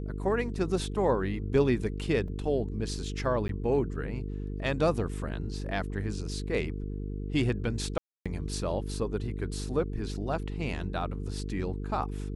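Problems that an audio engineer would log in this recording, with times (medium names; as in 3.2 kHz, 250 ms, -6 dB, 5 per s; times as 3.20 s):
buzz 50 Hz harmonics 9 -35 dBFS
2.28 s: dropout 2.7 ms
3.48–3.49 s: dropout 12 ms
7.98–8.26 s: dropout 276 ms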